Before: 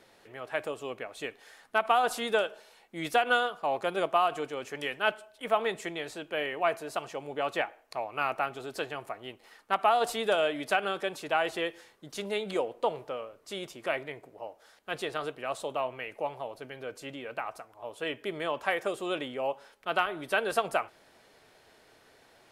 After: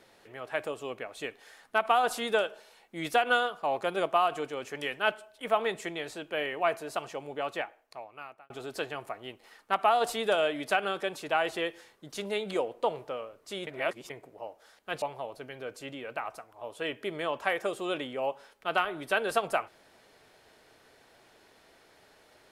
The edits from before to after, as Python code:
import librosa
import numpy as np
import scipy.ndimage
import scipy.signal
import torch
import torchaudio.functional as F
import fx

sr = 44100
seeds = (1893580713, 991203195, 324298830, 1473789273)

y = fx.edit(x, sr, fx.fade_out_span(start_s=7.1, length_s=1.4),
    fx.reverse_span(start_s=13.67, length_s=0.43),
    fx.cut(start_s=15.02, length_s=1.21), tone=tone)